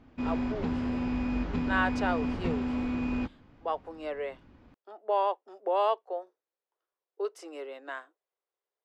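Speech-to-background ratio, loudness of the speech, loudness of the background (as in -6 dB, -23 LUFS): -1.5 dB, -33.5 LUFS, -32.0 LUFS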